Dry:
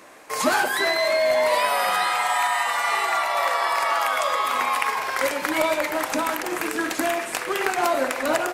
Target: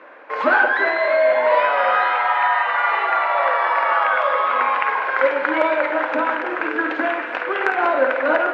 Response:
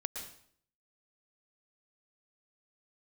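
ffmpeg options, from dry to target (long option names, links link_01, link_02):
-filter_complex "[0:a]highpass=290,equalizer=frequency=300:width_type=q:width=4:gain=4,equalizer=frequency=530:width_type=q:width=4:gain=8,equalizer=frequency=940:width_type=q:width=4:gain=4,equalizer=frequency=1500:width_type=q:width=4:gain=9,lowpass=frequency=2900:width=0.5412,lowpass=frequency=2900:width=1.3066,asoftclip=type=hard:threshold=-3dB,asplit=2[link_01][link_02];[1:a]atrim=start_sample=2205,adelay=52[link_03];[link_02][link_03]afir=irnorm=-1:irlink=0,volume=-9dB[link_04];[link_01][link_04]amix=inputs=2:normalize=0"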